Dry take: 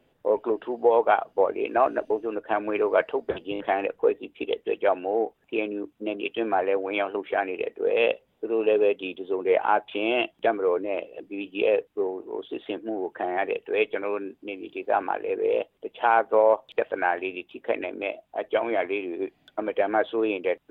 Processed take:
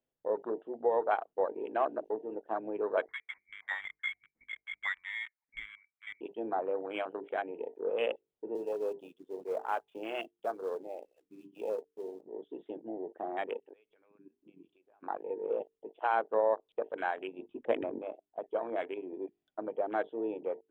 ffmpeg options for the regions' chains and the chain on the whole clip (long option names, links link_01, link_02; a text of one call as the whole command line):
ffmpeg -i in.wav -filter_complex "[0:a]asettb=1/sr,asplit=3[link_01][link_02][link_03];[link_01]atrim=end=3.064[link_04];[link_02]atrim=start=3.06:end=6.21,asetpts=PTS-STARTPTS,afade=type=in:duration=0.004:curve=qsin,afade=type=out:start_time=3.146:duration=0.004:curve=qsin,highpass=frequency=580:poles=1,lowpass=frequency=2200:width_type=q:width=0.5098,lowpass=frequency=2200:width_type=q:width=0.6013,lowpass=frequency=2200:width_type=q:width=0.9,lowpass=frequency=2200:width_type=q:width=2.563,afreqshift=-2600[link_05];[link_03]atrim=start=6.206[link_06];[link_04][link_05]acrossfade=duration=0.004:curve1=hsin:curve2=qsin[link_07];[link_07][link_06]acrossfade=duration=0.004:curve1=qsin:curve2=hsin,asettb=1/sr,asplit=3[link_08][link_09][link_10];[link_08]atrim=end=8.554[link_11];[link_09]atrim=start=8.55:end=12.21,asetpts=PTS-STARTPTS,afade=type=in:duration=0.004:curve=qsin,afade=type=out:start_time=3.656:duration=0.004:curve=qsin,equalizer=frequency=130:width_type=o:width=2.6:gain=-5.5,acrossover=split=540[link_12][link_13];[link_12]aeval=exprs='val(0)*(1-0.5/2+0.5/2*cos(2*PI*2.8*n/s))':channel_layout=same[link_14];[link_13]aeval=exprs='val(0)*(1-0.5/2-0.5/2*cos(2*PI*2.8*n/s))':channel_layout=same[link_15];[link_14][link_15]amix=inputs=2:normalize=0,acrusher=bits=3:mode=log:mix=0:aa=0.000001[link_16];[link_10]atrim=start=12.206[link_17];[link_11][link_16]acrossfade=duration=0.004:curve1=hsin:curve2=qsin[link_18];[link_18][link_17]acrossfade=duration=0.004:curve1=qsin:curve2=hsin,asettb=1/sr,asplit=3[link_19][link_20][link_21];[link_19]atrim=end=13.634[link_22];[link_20]atrim=start=13.63:end=15.03,asetpts=PTS-STARTPTS,afade=type=in:duration=0.004:curve=qsin,afade=type=out:start_time=1.396:duration=0.004:curve=qsin,equalizer=frequency=500:width_type=o:width=0.95:gain=-2.5,acompressor=threshold=-38dB:ratio=8:attack=3.2:release=140:knee=1:detection=peak[link_23];[link_21]atrim=start=15.026[link_24];[link_22][link_23]acrossfade=duration=0.004:curve1=hsin:curve2=qsin[link_25];[link_25][link_24]acrossfade=duration=0.004:curve1=qsin:curve2=hsin,asettb=1/sr,asplit=3[link_26][link_27][link_28];[link_26]atrim=end=17.394[link_29];[link_27]atrim=start=17.39:end=17.99,asetpts=PTS-STARTPTS,afade=type=in:duration=0.004:curve=qsin,afade=type=out:start_time=0.596:duration=0.004:curve=qsin,lowshelf=frequency=150:gain=11.5,acontrast=24,lowpass=2800[link_30];[link_28]atrim=start=17.986[link_31];[link_29][link_30]acrossfade=duration=0.004:curve1=hsin:curve2=qsin[link_32];[link_32][link_31]acrossfade=duration=0.004:curve1=qsin:curve2=hsin,bandreject=frequency=50:width_type=h:width=6,bandreject=frequency=100:width_type=h:width=6,bandreject=frequency=150:width_type=h:width=6,bandreject=frequency=200:width_type=h:width=6,bandreject=frequency=250:width_type=h:width=6,bandreject=frequency=300:width_type=h:width=6,bandreject=frequency=350:width_type=h:width=6,bandreject=frequency=400:width_type=h:width=6,bandreject=frequency=450:width_type=h:width=6,afwtdn=0.0316,equalizer=frequency=2300:width_type=o:width=0.77:gain=-2,volume=-9dB" out.wav